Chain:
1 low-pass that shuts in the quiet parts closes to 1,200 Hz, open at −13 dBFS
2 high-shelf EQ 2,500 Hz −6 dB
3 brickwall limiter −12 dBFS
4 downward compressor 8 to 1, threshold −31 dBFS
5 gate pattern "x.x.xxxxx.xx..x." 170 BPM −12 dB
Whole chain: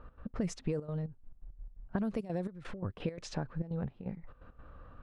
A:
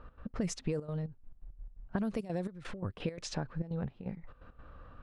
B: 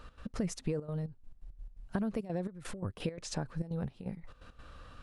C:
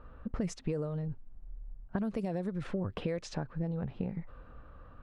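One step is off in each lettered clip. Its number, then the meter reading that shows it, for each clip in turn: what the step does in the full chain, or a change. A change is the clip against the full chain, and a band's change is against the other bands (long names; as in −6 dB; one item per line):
2, 8 kHz band +5.0 dB
1, 8 kHz band +5.0 dB
5, 8 kHz band −1.5 dB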